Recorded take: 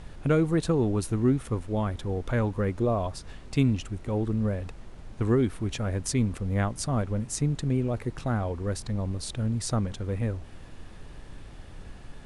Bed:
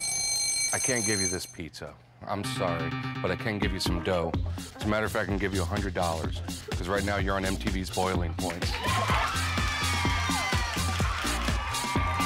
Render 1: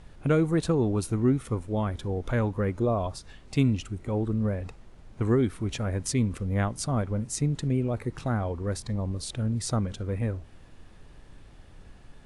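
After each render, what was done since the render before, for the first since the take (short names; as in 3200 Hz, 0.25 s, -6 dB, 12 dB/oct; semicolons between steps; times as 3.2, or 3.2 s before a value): noise print and reduce 6 dB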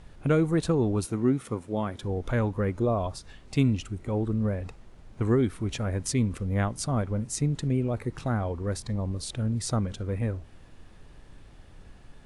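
1.06–2.03 HPF 140 Hz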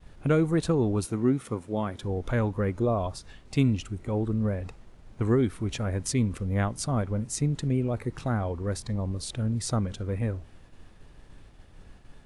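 expander -46 dBFS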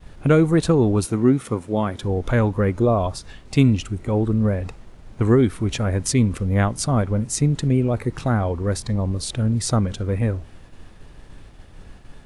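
gain +7.5 dB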